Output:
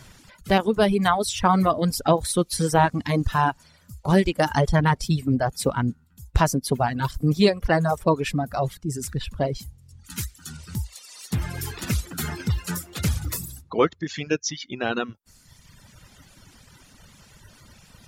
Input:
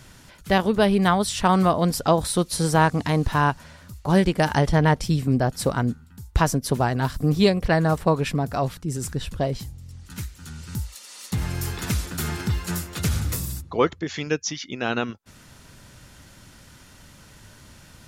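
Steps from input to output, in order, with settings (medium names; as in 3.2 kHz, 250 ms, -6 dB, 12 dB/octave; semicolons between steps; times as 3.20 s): coarse spectral quantiser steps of 15 dB; reverb removal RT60 1.4 s; 10.04–10.57 s: treble shelf 3.3 kHz +9 dB; trim +1 dB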